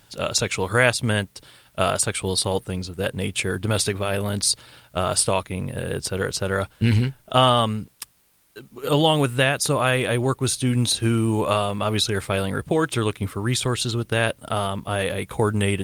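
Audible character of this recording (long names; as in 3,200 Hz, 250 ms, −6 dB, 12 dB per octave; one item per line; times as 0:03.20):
a quantiser's noise floor 10 bits, dither triangular
Opus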